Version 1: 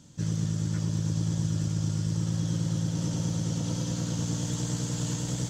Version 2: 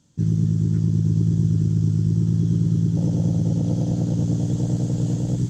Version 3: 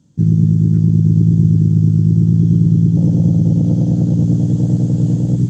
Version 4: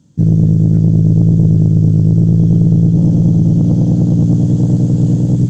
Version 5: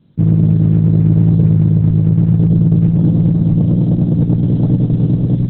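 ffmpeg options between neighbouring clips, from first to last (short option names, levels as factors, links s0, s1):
-af "afwtdn=0.0282,volume=2.82"
-af "equalizer=f=180:w=0.4:g=11,volume=0.794"
-af "aeval=exprs='(tanh(2*val(0)+0.2)-tanh(0.2))/2':c=same,volume=1.58"
-af "volume=0.891" -ar 48000 -c:a libopus -b:a 6k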